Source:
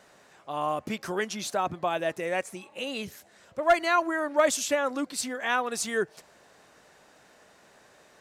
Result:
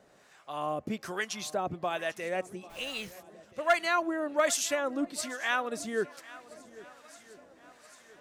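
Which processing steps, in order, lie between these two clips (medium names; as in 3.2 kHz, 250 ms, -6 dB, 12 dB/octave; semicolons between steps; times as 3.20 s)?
peaking EQ 930 Hz -3.5 dB 0.25 oct; on a send: shuffle delay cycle 1327 ms, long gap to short 1.5:1, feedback 43%, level -20 dB; 2.69–3.11 s: on the sum: added noise pink -51 dBFS; harmonic tremolo 1.2 Hz, depth 70%, crossover 780 Hz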